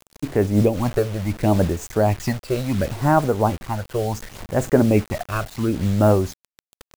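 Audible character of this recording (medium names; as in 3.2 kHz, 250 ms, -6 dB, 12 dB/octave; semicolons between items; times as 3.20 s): phasing stages 8, 0.7 Hz, lowest notch 250–4700 Hz; a quantiser's noise floor 6-bit, dither none; random flutter of the level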